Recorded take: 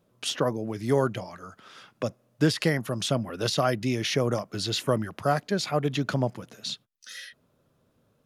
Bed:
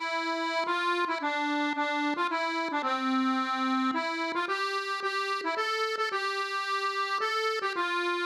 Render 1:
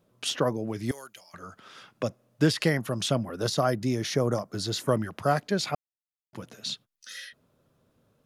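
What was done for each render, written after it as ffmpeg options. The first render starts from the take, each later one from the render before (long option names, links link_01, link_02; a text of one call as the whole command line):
ffmpeg -i in.wav -filter_complex "[0:a]asettb=1/sr,asplit=3[link_01][link_02][link_03];[link_01]atrim=end=0.914[link_04];[link_02]atrim=start=0.91:end=1.34,asetpts=PTS-STARTPTS,afade=type=in:duration=0.004:curve=qsin,afade=type=out:start_time=0.426:duration=0.004:curve=qsin,aderivative[link_05];[link_03]atrim=start=1.336[link_06];[link_04][link_05]acrossfade=duration=0.004:curve1=hsin:curve2=qsin[link_07];[link_07][link_06]acrossfade=duration=0.004:curve1=qsin:curve2=hsin,asettb=1/sr,asplit=3[link_08][link_09][link_10];[link_08]atrim=end=3.254[link_11];[link_09]atrim=start=3.25:end=4.88,asetpts=PTS-STARTPTS,afade=type=in:duration=0.004:curve=qsin,afade=type=out:start_time=1.626:duration=0.004:curve=qsin,equalizer=frequency=2700:width=1.6:gain=-9.5[link_12];[link_10]atrim=start=4.876[link_13];[link_11][link_12]acrossfade=duration=0.004:curve1=hsin:curve2=qsin[link_14];[link_14][link_13]acrossfade=duration=0.004:curve1=qsin:curve2=hsin,asplit=3[link_15][link_16][link_17];[link_15]atrim=end=5.75,asetpts=PTS-STARTPTS,afade=type=out:start_time=5.746:duration=0.004:curve=hsin[link_18];[link_16]atrim=start=5.75:end=6.33,asetpts=PTS-STARTPTS,volume=0[link_19];[link_17]atrim=start=6.33,asetpts=PTS-STARTPTS,afade=type=in:duration=0.004:curve=hsin[link_20];[link_18][link_19][link_20]concat=n=3:v=0:a=1" out.wav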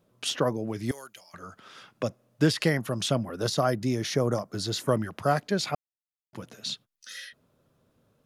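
ffmpeg -i in.wav -af anull out.wav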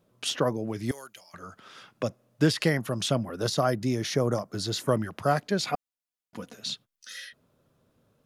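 ffmpeg -i in.wav -filter_complex "[0:a]asettb=1/sr,asplit=3[link_01][link_02][link_03];[link_01]atrim=end=5.684[link_04];[link_02]atrim=start=5.68:end=6.55,asetpts=PTS-STARTPTS,afade=type=in:duration=0.004:curve=qsin,afade=type=out:start_time=0.866:duration=0.004:curve=qsin,aecho=1:1:4.1:0.6,atrim=end_sample=38367[link_05];[link_03]atrim=start=6.546[link_06];[link_04][link_05]acrossfade=duration=0.004:curve1=hsin:curve2=qsin[link_07];[link_07][link_06]acrossfade=duration=0.004:curve1=qsin:curve2=hsin" out.wav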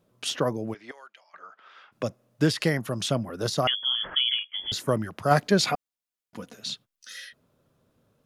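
ffmpeg -i in.wav -filter_complex "[0:a]asplit=3[link_01][link_02][link_03];[link_01]afade=type=out:start_time=0.73:duration=0.02[link_04];[link_02]highpass=700,lowpass=2600,afade=type=in:start_time=0.73:duration=0.02,afade=type=out:start_time=1.91:duration=0.02[link_05];[link_03]afade=type=in:start_time=1.91:duration=0.02[link_06];[link_04][link_05][link_06]amix=inputs=3:normalize=0,asettb=1/sr,asplit=3[link_07][link_08][link_09];[link_07]atrim=end=3.674[link_10];[link_08]atrim=start=3.67:end=4.72,asetpts=PTS-STARTPTS,afade=type=in:duration=0.004:curve=qsin,afade=type=out:start_time=1.046:duration=0.004:curve=qsin,lowpass=frequency=3000:width_type=q:width=0.5098,lowpass=frequency=3000:width_type=q:width=0.6013,lowpass=frequency=3000:width_type=q:width=0.9,lowpass=frequency=3000:width_type=q:width=2.563,afreqshift=-3500[link_11];[link_09]atrim=start=4.716[link_12];[link_10][link_11]acrossfade=duration=0.004:curve1=hsin:curve2=qsin[link_13];[link_13][link_12]acrossfade=duration=0.004:curve1=qsin:curve2=hsin,asplit=3[link_14][link_15][link_16];[link_14]afade=type=out:start_time=5.3:duration=0.02[link_17];[link_15]acontrast=61,afade=type=in:start_time=5.3:duration=0.02,afade=type=out:start_time=5.72:duration=0.02[link_18];[link_16]afade=type=in:start_time=5.72:duration=0.02[link_19];[link_17][link_18][link_19]amix=inputs=3:normalize=0" out.wav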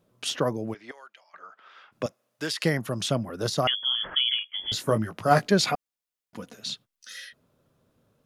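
ffmpeg -i in.wav -filter_complex "[0:a]asettb=1/sr,asplit=3[link_01][link_02][link_03];[link_01]atrim=end=2.064[link_04];[link_02]atrim=start=2.06:end=2.64,asetpts=PTS-STARTPTS,afade=type=in:duration=0.004:curve=qsin,afade=type=out:start_time=0.576:duration=0.004:curve=qsin,highpass=frequency=1100:poles=1[link_05];[link_03]atrim=start=2.636[link_06];[link_04][link_05]acrossfade=duration=0.004:curve1=hsin:curve2=qsin[link_07];[link_07][link_06]acrossfade=duration=0.004:curve1=qsin:curve2=hsin,asettb=1/sr,asplit=3[link_08][link_09][link_10];[link_08]atrim=end=4.664[link_11];[link_09]atrim=start=4.66:end=5.46,asetpts=PTS-STARTPTS,afade=type=in:duration=0.004:curve=qsin,afade=type=out:start_time=0.796:duration=0.004:curve=qsin,asplit=2[link_12][link_13];[link_13]adelay=18,volume=-7dB[link_14];[link_12][link_14]amix=inputs=2:normalize=0,atrim=end_sample=35280[link_15];[link_10]atrim=start=5.456[link_16];[link_11][link_15]acrossfade=duration=0.004:curve1=hsin:curve2=qsin[link_17];[link_17][link_16]acrossfade=duration=0.004:curve1=qsin:curve2=hsin" out.wav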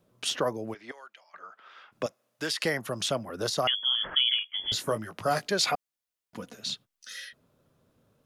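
ffmpeg -i in.wav -filter_complex "[0:a]acrossover=split=380|2700[link_01][link_02][link_03];[link_01]acompressor=threshold=-37dB:ratio=6[link_04];[link_02]alimiter=limit=-17.5dB:level=0:latency=1:release=388[link_05];[link_04][link_05][link_03]amix=inputs=3:normalize=0" out.wav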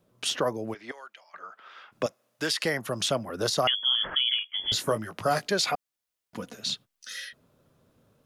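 ffmpeg -i in.wav -af "alimiter=limit=-17.5dB:level=0:latency=1:release=460,dynaudnorm=framelen=150:gausssize=3:maxgain=3dB" out.wav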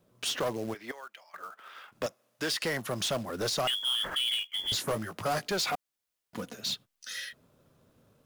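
ffmpeg -i in.wav -af "asoftclip=type=tanh:threshold=-25dB,acrusher=bits=4:mode=log:mix=0:aa=0.000001" out.wav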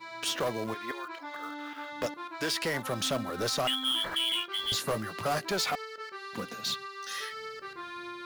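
ffmpeg -i in.wav -i bed.wav -filter_complex "[1:a]volume=-12dB[link_01];[0:a][link_01]amix=inputs=2:normalize=0" out.wav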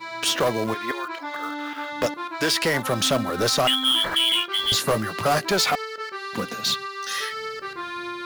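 ffmpeg -i in.wav -af "volume=9dB" out.wav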